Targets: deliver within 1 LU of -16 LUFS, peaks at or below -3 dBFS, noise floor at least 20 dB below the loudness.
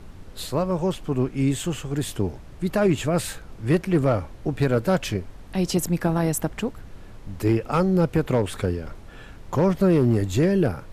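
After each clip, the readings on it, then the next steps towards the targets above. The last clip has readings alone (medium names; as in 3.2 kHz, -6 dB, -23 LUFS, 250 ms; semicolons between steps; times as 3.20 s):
clipped samples 0.3%; clipping level -11.5 dBFS; noise floor -43 dBFS; noise floor target -44 dBFS; loudness -24.0 LUFS; peak level -11.5 dBFS; loudness target -16.0 LUFS
-> clip repair -11.5 dBFS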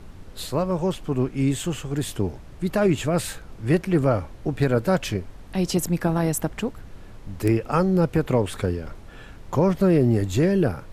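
clipped samples 0.0%; noise floor -43 dBFS; noise floor target -44 dBFS
-> noise print and reduce 6 dB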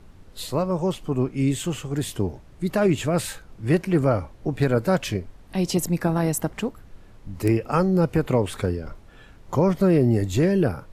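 noise floor -48 dBFS; loudness -23.5 LUFS; peak level -6.0 dBFS; loudness target -16.0 LUFS
-> trim +7.5 dB; peak limiter -3 dBFS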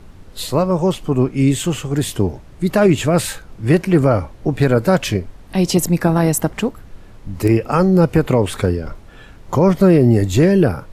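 loudness -16.5 LUFS; peak level -3.0 dBFS; noise floor -41 dBFS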